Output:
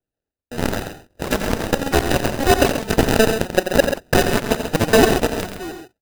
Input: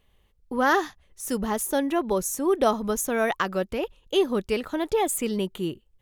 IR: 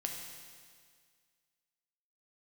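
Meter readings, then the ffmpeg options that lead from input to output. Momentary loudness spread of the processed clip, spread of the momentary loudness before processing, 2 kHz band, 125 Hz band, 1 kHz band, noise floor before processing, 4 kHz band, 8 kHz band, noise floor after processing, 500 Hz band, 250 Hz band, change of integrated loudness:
13 LU, 9 LU, +8.0 dB, +15.5 dB, +4.5 dB, −65 dBFS, +10.5 dB, +4.0 dB, below −85 dBFS, +6.5 dB, +6.0 dB, +7.0 dB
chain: -filter_complex "[0:a]highpass=frequency=95:width=0.5412,highpass=frequency=95:width=1.3066,agate=range=-20dB:threshold=-49dB:ratio=16:detection=peak,equalizer=frequency=180:width_type=o:width=1.2:gain=-14,asplit=2[link_01][link_02];[link_02]acompressor=threshold=-34dB:ratio=6,volume=3dB[link_03];[link_01][link_03]amix=inputs=2:normalize=0,alimiter=limit=-15.5dB:level=0:latency=1:release=350,dynaudnorm=framelen=110:gausssize=11:maxgain=13dB,acrusher=samples=40:mix=1:aa=0.000001,aphaser=in_gain=1:out_gain=1:delay=4.4:decay=0.3:speed=1:type=triangular,aeval=exprs='0.944*(cos(1*acos(clip(val(0)/0.944,-1,1)))-cos(1*PI/2))+0.237*(cos(7*acos(clip(val(0)/0.944,-1,1)))-cos(7*PI/2))':channel_layout=same,asplit=2[link_04][link_05];[link_05]aecho=0:1:87.46|134.1:0.355|0.355[link_06];[link_04][link_06]amix=inputs=2:normalize=0,volume=-2.5dB"

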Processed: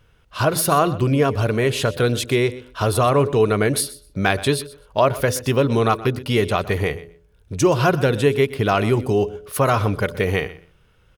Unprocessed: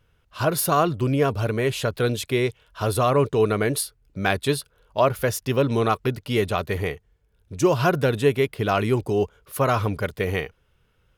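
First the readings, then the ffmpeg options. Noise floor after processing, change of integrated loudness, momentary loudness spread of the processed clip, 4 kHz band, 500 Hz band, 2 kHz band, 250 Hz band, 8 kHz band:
−56 dBFS, +3.5 dB, 7 LU, +4.5 dB, +3.0 dB, +4.0 dB, +3.5 dB, +4.5 dB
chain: -filter_complex "[0:a]equalizer=frequency=13000:width=7.9:gain=-15,bandreject=frequency=7200:width=29,bandreject=frequency=84.2:width_type=h:width=4,bandreject=frequency=168.4:width_type=h:width=4,bandreject=frequency=252.6:width_type=h:width=4,bandreject=frequency=336.8:width_type=h:width=4,bandreject=frequency=421:width_type=h:width=4,bandreject=frequency=505.2:width_type=h:width=4,bandreject=frequency=589.4:width_type=h:width=4,asplit=2[link_01][link_02];[link_02]acompressor=threshold=-27dB:ratio=6,volume=2.5dB[link_03];[link_01][link_03]amix=inputs=2:normalize=0,aecho=1:1:124|248:0.133|0.0213"

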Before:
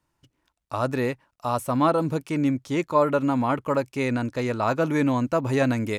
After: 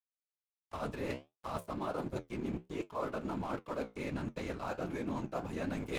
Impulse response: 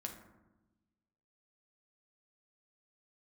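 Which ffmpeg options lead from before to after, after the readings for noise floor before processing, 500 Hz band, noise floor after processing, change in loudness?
−76 dBFS, −15.0 dB, below −85 dBFS, −15.0 dB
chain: -af "afftfilt=real='hypot(re,im)*cos(2*PI*random(0))':imag='hypot(re,im)*sin(2*PI*random(1))':win_size=512:overlap=0.75,aeval=exprs='sgn(val(0))*max(abs(val(0))-0.00794,0)':channel_layout=same,bandreject=frequency=1900:width=20,flanger=delay=9.7:depth=8.1:regen=-66:speed=1.4:shape=triangular,areverse,acompressor=threshold=-48dB:ratio=5,areverse,volume=11.5dB"

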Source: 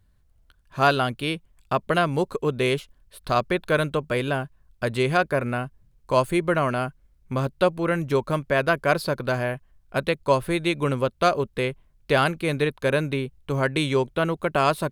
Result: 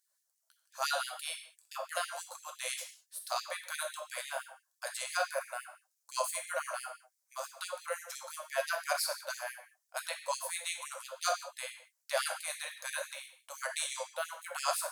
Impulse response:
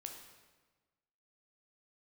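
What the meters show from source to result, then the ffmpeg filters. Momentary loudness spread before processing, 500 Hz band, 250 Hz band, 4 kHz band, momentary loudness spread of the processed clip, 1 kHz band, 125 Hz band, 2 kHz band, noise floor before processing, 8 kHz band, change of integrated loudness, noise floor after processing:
8 LU, −17.5 dB, below −40 dB, −7.0 dB, 11 LU, −12.5 dB, below −40 dB, −11.5 dB, −61 dBFS, +5.5 dB, −13.0 dB, −82 dBFS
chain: -filter_complex "[0:a]highshelf=frequency=4300:width_type=q:width=1.5:gain=13[link_01];[1:a]atrim=start_sample=2205,afade=type=out:start_time=0.43:duration=0.01,atrim=end_sample=19404,asetrate=79380,aresample=44100[link_02];[link_01][link_02]afir=irnorm=-1:irlink=0,afftfilt=real='re*gte(b*sr/1024,480*pow(1800/480,0.5+0.5*sin(2*PI*5.9*pts/sr)))':imag='im*gte(b*sr/1024,480*pow(1800/480,0.5+0.5*sin(2*PI*5.9*pts/sr)))':win_size=1024:overlap=0.75"

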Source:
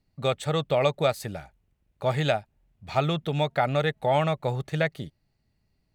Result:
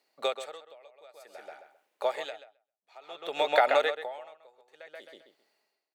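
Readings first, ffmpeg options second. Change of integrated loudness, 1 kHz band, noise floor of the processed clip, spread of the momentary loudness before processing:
−3.0 dB, −3.0 dB, below −85 dBFS, 9 LU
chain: -filter_complex "[0:a]highpass=frequency=440:width=0.5412,highpass=frequency=440:width=1.3066,acompressor=threshold=-26dB:ratio=6,asplit=2[link_01][link_02];[link_02]adelay=132,lowpass=frequency=3900:poles=1,volume=-4.5dB,asplit=2[link_03][link_04];[link_04]adelay=132,lowpass=frequency=3900:poles=1,volume=0.18,asplit=2[link_05][link_06];[link_06]adelay=132,lowpass=frequency=3900:poles=1,volume=0.18[link_07];[link_01][link_03][link_05][link_07]amix=inputs=4:normalize=0,aeval=exprs='val(0)*pow(10,-34*(0.5-0.5*cos(2*PI*0.55*n/s))/20)':channel_layout=same,volume=8dB"

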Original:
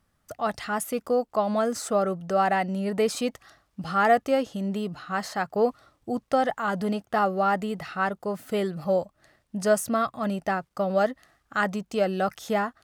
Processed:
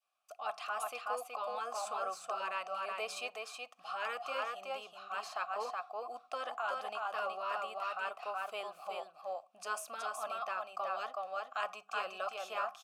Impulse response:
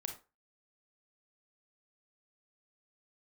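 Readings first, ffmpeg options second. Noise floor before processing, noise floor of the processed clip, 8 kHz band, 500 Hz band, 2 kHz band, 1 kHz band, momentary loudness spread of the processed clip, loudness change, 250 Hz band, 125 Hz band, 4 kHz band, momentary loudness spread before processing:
−72 dBFS, −64 dBFS, −11.5 dB, −16.5 dB, −9.5 dB, −10.0 dB, 6 LU, −13.0 dB, −35.5 dB, below −35 dB, −6.5 dB, 9 LU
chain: -filter_complex "[0:a]aderivative,asplit=2[link_01][link_02];[1:a]atrim=start_sample=2205[link_03];[link_02][link_03]afir=irnorm=-1:irlink=0,volume=-14.5dB[link_04];[link_01][link_04]amix=inputs=2:normalize=0,adynamicequalizer=threshold=0.002:dfrequency=1100:dqfactor=1.1:tfrequency=1100:tqfactor=1.1:attack=5:release=100:ratio=0.375:range=4:mode=boostabove:tftype=bell,asplit=3[link_05][link_06][link_07];[link_05]bandpass=frequency=730:width_type=q:width=8,volume=0dB[link_08];[link_06]bandpass=frequency=1090:width_type=q:width=8,volume=-6dB[link_09];[link_07]bandpass=frequency=2440:width_type=q:width=8,volume=-9dB[link_10];[link_08][link_09][link_10]amix=inputs=3:normalize=0,bandreject=frequency=50:width_type=h:width=6,bandreject=frequency=100:width_type=h:width=6,bandreject=frequency=150:width_type=h:width=6,bandreject=frequency=200:width_type=h:width=6,aecho=1:1:372:0.596,afftfilt=real='re*lt(hypot(re,im),0.0282)':imag='im*lt(hypot(re,im),0.0282)':win_size=1024:overlap=0.75,volume=15.5dB"

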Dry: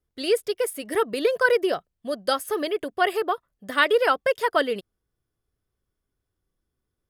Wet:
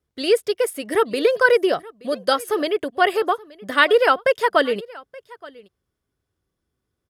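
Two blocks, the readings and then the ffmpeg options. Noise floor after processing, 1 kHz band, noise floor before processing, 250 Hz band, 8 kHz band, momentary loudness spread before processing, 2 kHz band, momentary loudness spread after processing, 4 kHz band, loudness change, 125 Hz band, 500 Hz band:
−80 dBFS, +4.5 dB, −82 dBFS, +4.5 dB, +1.5 dB, 9 LU, +4.5 dB, 10 LU, +4.0 dB, +4.5 dB, can't be measured, +4.5 dB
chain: -filter_complex "[0:a]highpass=58,highshelf=frequency=12000:gain=-9,asplit=2[link_01][link_02];[link_02]aecho=0:1:875:0.0794[link_03];[link_01][link_03]amix=inputs=2:normalize=0,volume=4.5dB"

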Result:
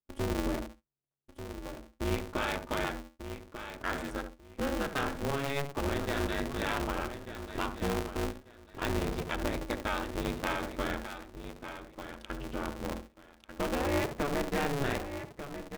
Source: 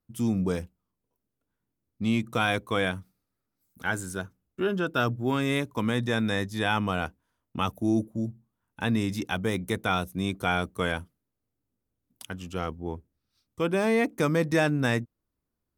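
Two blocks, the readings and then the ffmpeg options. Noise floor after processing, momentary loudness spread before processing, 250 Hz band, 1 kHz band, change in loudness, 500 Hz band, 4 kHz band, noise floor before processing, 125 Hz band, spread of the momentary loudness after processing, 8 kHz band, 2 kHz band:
−64 dBFS, 12 LU, −7.5 dB, −4.0 dB, −7.0 dB, −5.0 dB, −5.5 dB, −83 dBFS, −7.5 dB, 13 LU, −2.0 dB, −6.5 dB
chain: -filter_complex "[0:a]acompressor=threshold=-34dB:ratio=2,asplit=2[link_01][link_02];[link_02]adelay=71,lowpass=frequency=1200:poles=1,volume=-7dB,asplit=2[link_03][link_04];[link_04]adelay=71,lowpass=frequency=1200:poles=1,volume=0.21,asplit=2[link_05][link_06];[link_06]adelay=71,lowpass=frequency=1200:poles=1,volume=0.21[link_07];[link_03][link_05][link_07]amix=inputs=3:normalize=0[link_08];[link_01][link_08]amix=inputs=2:normalize=0,afftdn=noise_reduction=17:noise_floor=-48,adynamicsmooth=sensitivity=7.5:basefreq=2800,asplit=2[link_09][link_10];[link_10]aecho=0:1:1192|2384|3576:0.316|0.0727|0.0167[link_11];[link_09][link_11]amix=inputs=2:normalize=0,aeval=exprs='val(0)*sgn(sin(2*PI*140*n/s))':channel_layout=same"

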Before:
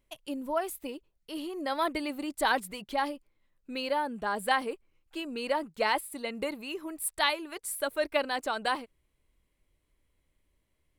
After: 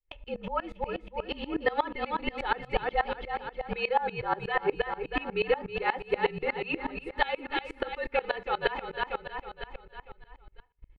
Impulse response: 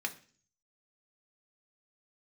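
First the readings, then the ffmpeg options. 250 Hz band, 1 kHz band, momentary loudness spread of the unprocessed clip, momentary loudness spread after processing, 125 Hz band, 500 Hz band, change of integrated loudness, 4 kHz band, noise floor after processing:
−2.0 dB, +1.0 dB, 12 LU, 8 LU, can't be measured, +2.5 dB, +0.5 dB, −3.0 dB, −63 dBFS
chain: -filter_complex "[0:a]lowshelf=frequency=150:width_type=q:width=1.5:gain=11,asplit=2[link_01][link_02];[link_02]alimiter=limit=-22dB:level=0:latency=1:release=226,volume=0.5dB[link_03];[link_01][link_03]amix=inputs=2:normalize=0,aecho=1:1:318|636|954|1272|1590|1908:0.398|0.215|0.116|0.0627|0.0339|0.0183,acompressor=threshold=-28dB:ratio=3,afreqshift=-51,lowpass=frequency=3100:width=0.5412,lowpass=frequency=3100:width=1.3066,equalizer=frequency=200:width_type=o:width=0.24:gain=13,agate=range=-20dB:threshold=-53dB:ratio=16:detection=peak,aecho=1:1:2.3:0.87,asplit=2[link_04][link_05];[1:a]atrim=start_sample=2205[link_06];[link_05][link_06]afir=irnorm=-1:irlink=0,volume=-10.5dB[link_07];[link_04][link_07]amix=inputs=2:normalize=0,aeval=exprs='val(0)*pow(10,-23*if(lt(mod(-8.3*n/s,1),2*abs(-8.3)/1000),1-mod(-8.3*n/s,1)/(2*abs(-8.3)/1000),(mod(-8.3*n/s,1)-2*abs(-8.3)/1000)/(1-2*abs(-8.3)/1000))/20)':channel_layout=same,volume=4dB"

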